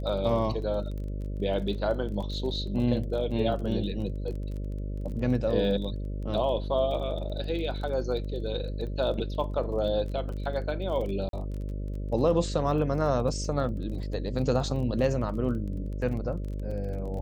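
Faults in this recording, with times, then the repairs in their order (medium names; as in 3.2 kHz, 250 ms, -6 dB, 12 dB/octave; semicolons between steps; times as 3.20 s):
buzz 50 Hz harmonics 12 -33 dBFS
crackle 25 per s -37 dBFS
11.29–11.33 s: dropout 42 ms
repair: de-click; de-hum 50 Hz, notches 12; interpolate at 11.29 s, 42 ms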